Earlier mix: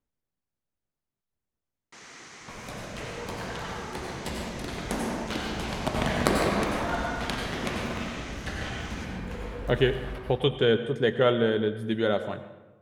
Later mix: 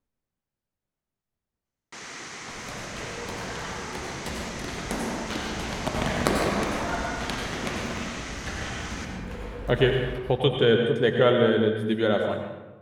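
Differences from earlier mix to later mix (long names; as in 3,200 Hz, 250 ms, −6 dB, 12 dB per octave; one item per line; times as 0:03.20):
speech: send +9.5 dB
first sound +7.5 dB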